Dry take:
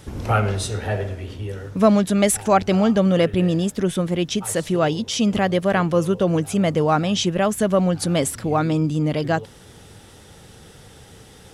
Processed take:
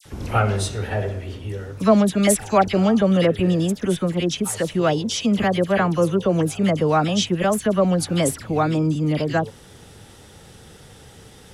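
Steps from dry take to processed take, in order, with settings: phase dispersion lows, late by 55 ms, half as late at 1.8 kHz

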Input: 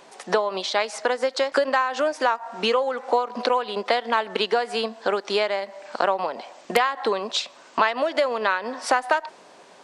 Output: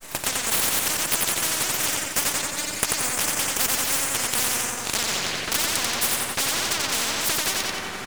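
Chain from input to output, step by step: band-stop 480 Hz, Q 12; tape speed +22%; granulator, spray 22 ms, pitch spread up and down by 0 st; saturation -20.5 dBFS, distortion -10 dB; high-pass sweep 3.7 kHz -> 280 Hz, 4.77–5.88 s; full-wave rectifier; on a send: feedback delay 89 ms, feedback 51%, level -4 dB; on the sum: spectrum-flattening compressor 10:1; trim +8.5 dB

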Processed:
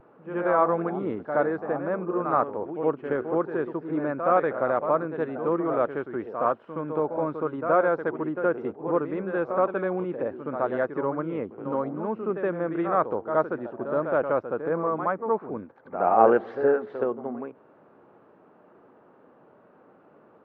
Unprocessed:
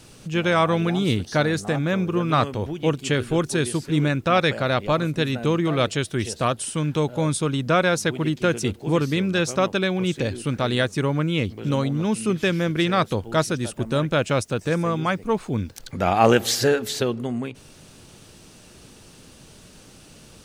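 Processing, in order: high-pass 390 Hz 12 dB/octave; vibrato 0.59 Hz 26 cents; low-pass 1.3 kHz 24 dB/octave; reverse echo 71 ms -8 dB; AAC 64 kbps 48 kHz

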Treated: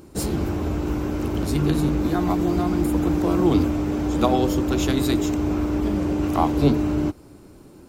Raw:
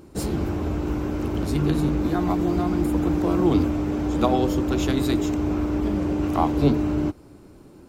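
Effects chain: treble shelf 4.9 kHz +5 dB; trim +1 dB

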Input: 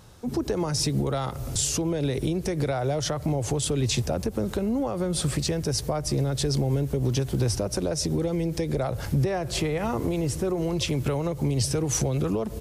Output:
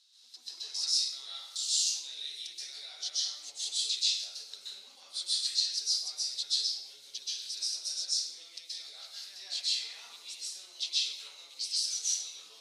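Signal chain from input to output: ladder band-pass 4.5 kHz, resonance 65%; plate-style reverb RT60 0.88 s, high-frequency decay 0.65×, pre-delay 115 ms, DRR -8.5 dB; trim +1.5 dB

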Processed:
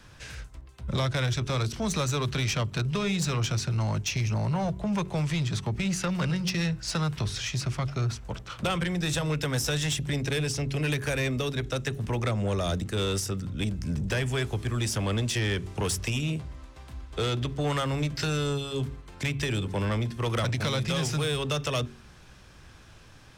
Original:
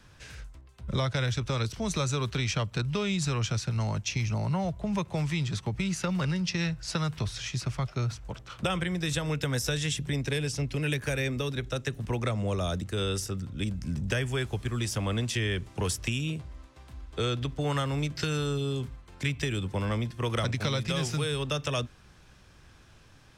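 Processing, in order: de-hum 46.38 Hz, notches 9; saturation -26 dBFS, distortion -15 dB; trim +4.5 dB

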